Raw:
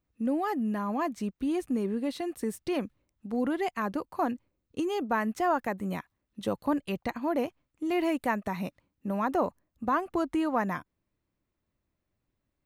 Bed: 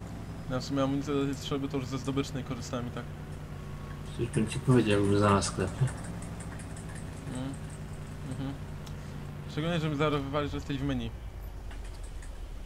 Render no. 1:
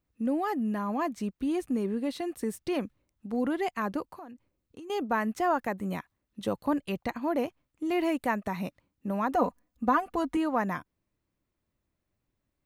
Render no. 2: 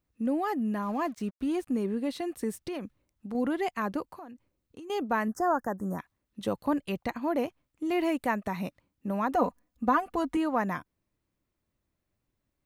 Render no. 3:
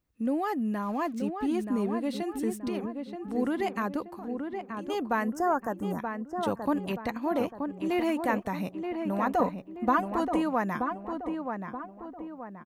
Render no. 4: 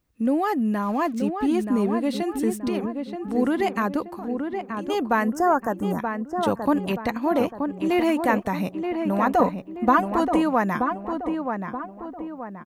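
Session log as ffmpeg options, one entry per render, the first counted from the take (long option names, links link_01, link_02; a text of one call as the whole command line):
ffmpeg -i in.wav -filter_complex "[0:a]asettb=1/sr,asplit=3[link_01][link_02][link_03];[link_01]atrim=end=4.144[link_04];[link_02]atrim=start=4.14:end=4.9,asetpts=PTS-STARTPTS,afade=type=in:duration=0.004:curve=qsin,afade=type=out:start_time=0.756:duration=0.004:curve=qsin,acompressor=threshold=-45dB:ratio=4:attack=3.2:release=140:knee=1:detection=peak[link_05];[link_03]atrim=start=4.896[link_06];[link_04][link_05]acrossfade=duration=0.004:curve1=hsin:curve2=qsin[link_07];[link_07][link_06]acrossfade=duration=0.004:curve1=qsin:curve2=hsin,asettb=1/sr,asplit=3[link_08][link_09][link_10];[link_08]atrim=end=9.344[link_11];[link_09]atrim=start=9.34:end=10.37,asetpts=PTS-STARTPTS,afade=type=in:duration=0.004:curve=qsin,afade=type=out:start_time=1.026:duration=0.004:curve=qsin,aecho=1:1:4.1:0.72,atrim=end_sample=45423[link_12];[link_10]atrim=start=10.366[link_13];[link_11][link_12]acrossfade=duration=0.004:curve1=hsin:curve2=qsin[link_14];[link_14][link_13]acrossfade=duration=0.004:curve1=qsin:curve2=hsin" out.wav
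ffmpeg -i in.wav -filter_complex "[0:a]asettb=1/sr,asplit=3[link_01][link_02][link_03];[link_01]atrim=end=0.824[link_04];[link_02]atrim=start=0.82:end=1.67,asetpts=PTS-STARTPTS,afade=type=in:duration=0.004:curve=qsin,afade=type=out:start_time=0.846:duration=0.004:curve=qsin,aeval=exprs='sgn(val(0))*max(abs(val(0))-0.00211,0)':channel_layout=same[link_05];[link_03]atrim=start=1.666[link_06];[link_04][link_05]acrossfade=duration=0.004:curve1=hsin:curve2=qsin[link_07];[link_07][link_06]acrossfade=duration=0.004:curve1=qsin:curve2=hsin,asettb=1/sr,asplit=3[link_08][link_09][link_10];[link_08]atrim=end=2.514[link_11];[link_09]atrim=start=2.51:end=3.35,asetpts=PTS-STARTPTS,afade=type=in:duration=0.004:curve=qsin,afade=type=out:start_time=0.836:duration=0.004:curve=qsin,acompressor=threshold=-31dB:ratio=6:attack=3.2:release=140:knee=1:detection=peak[link_12];[link_10]atrim=start=3.346[link_13];[link_11][link_12]acrossfade=duration=0.004:curve1=hsin:curve2=qsin[link_14];[link_14][link_13]acrossfade=duration=0.004:curve1=qsin:curve2=hsin,asettb=1/sr,asplit=3[link_15][link_16][link_17];[link_15]atrim=end=5.284[link_18];[link_16]atrim=start=5.28:end=5.99,asetpts=PTS-STARTPTS,afade=type=in:duration=0.004:curve=qsin,afade=type=out:start_time=0.706:duration=0.004:curve=qsin,asuperstop=centerf=3000:order=12:qfactor=0.9[link_19];[link_17]atrim=start=5.986[link_20];[link_18][link_19]acrossfade=duration=0.004:curve1=hsin:curve2=qsin[link_21];[link_21][link_20]acrossfade=duration=0.004:curve1=qsin:curve2=hsin" out.wav
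ffmpeg -i in.wav -filter_complex "[0:a]asplit=2[link_01][link_02];[link_02]adelay=928,lowpass=frequency=1800:poles=1,volume=-5.5dB,asplit=2[link_03][link_04];[link_04]adelay=928,lowpass=frequency=1800:poles=1,volume=0.45,asplit=2[link_05][link_06];[link_06]adelay=928,lowpass=frequency=1800:poles=1,volume=0.45,asplit=2[link_07][link_08];[link_08]adelay=928,lowpass=frequency=1800:poles=1,volume=0.45,asplit=2[link_09][link_10];[link_10]adelay=928,lowpass=frequency=1800:poles=1,volume=0.45[link_11];[link_01][link_03][link_05][link_07][link_09][link_11]amix=inputs=6:normalize=0" out.wav
ffmpeg -i in.wav -af "volume=6.5dB" out.wav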